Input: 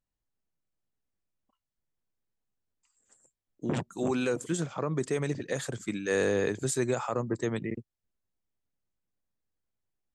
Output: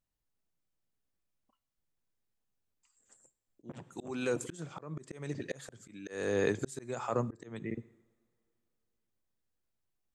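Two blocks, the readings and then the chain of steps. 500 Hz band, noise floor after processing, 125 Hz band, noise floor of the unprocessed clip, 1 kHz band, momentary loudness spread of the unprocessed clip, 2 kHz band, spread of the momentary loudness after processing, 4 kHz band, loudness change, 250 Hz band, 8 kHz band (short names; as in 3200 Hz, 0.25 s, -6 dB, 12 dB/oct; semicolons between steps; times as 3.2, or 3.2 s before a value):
-6.0 dB, under -85 dBFS, -7.5 dB, under -85 dBFS, -5.0 dB, 7 LU, -6.5 dB, 17 LU, -7.5 dB, -6.0 dB, -7.5 dB, -10.0 dB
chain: two-slope reverb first 0.78 s, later 3.2 s, from -26 dB, DRR 19 dB; auto swell 0.401 s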